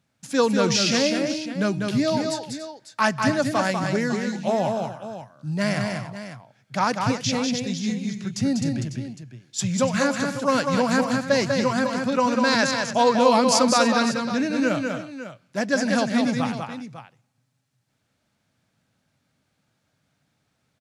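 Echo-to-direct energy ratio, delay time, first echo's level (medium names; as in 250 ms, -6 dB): -3.5 dB, 195 ms, -4.5 dB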